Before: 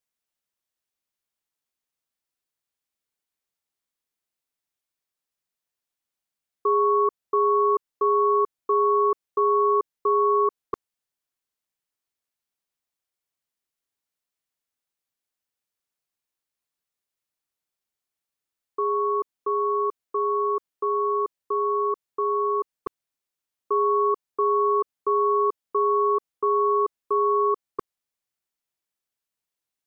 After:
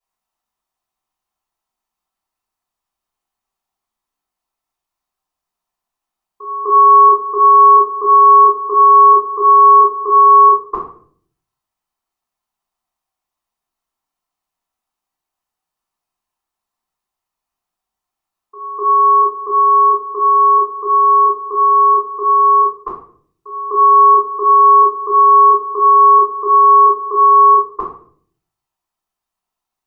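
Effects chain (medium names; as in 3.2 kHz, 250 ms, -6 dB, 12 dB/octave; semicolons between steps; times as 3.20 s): high-order bell 920 Hz +10.5 dB 1.1 oct; pre-echo 251 ms -16.5 dB; simulated room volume 60 m³, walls mixed, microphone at 3.2 m; trim -9.5 dB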